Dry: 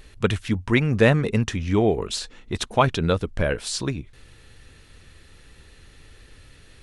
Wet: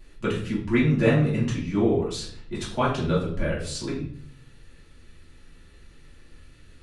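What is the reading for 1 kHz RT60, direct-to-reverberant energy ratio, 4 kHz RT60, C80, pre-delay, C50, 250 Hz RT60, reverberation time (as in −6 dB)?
0.50 s, −7.5 dB, 0.45 s, 9.5 dB, 3 ms, 5.5 dB, 0.80 s, 0.60 s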